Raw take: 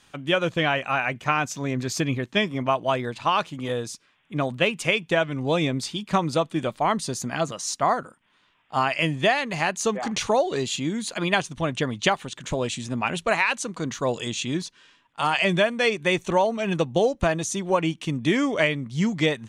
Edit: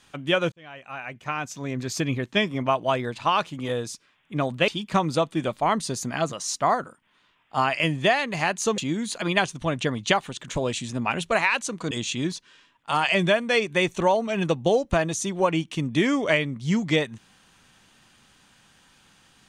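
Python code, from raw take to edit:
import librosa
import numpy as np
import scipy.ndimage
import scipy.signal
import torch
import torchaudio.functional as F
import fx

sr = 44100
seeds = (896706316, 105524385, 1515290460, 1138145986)

y = fx.edit(x, sr, fx.fade_in_span(start_s=0.52, length_s=1.72),
    fx.cut(start_s=4.68, length_s=1.19),
    fx.cut(start_s=9.97, length_s=0.77),
    fx.cut(start_s=13.87, length_s=0.34), tone=tone)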